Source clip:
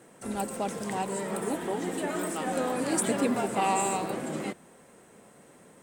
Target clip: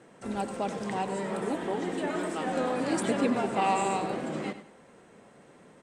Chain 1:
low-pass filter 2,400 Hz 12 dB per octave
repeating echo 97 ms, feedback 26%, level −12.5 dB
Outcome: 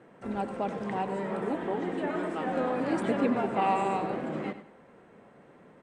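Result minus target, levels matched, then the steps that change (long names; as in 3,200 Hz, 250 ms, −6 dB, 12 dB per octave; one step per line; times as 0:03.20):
4,000 Hz band −6.0 dB
change: low-pass filter 5,400 Hz 12 dB per octave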